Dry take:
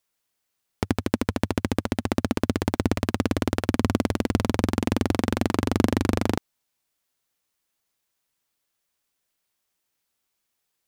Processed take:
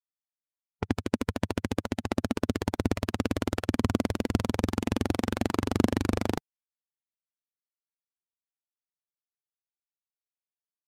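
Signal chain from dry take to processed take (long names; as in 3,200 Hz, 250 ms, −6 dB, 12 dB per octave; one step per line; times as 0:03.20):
spectral dynamics exaggerated over time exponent 1.5
low-pass that shuts in the quiet parts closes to 1,500 Hz, open at −26 dBFS
level −1.5 dB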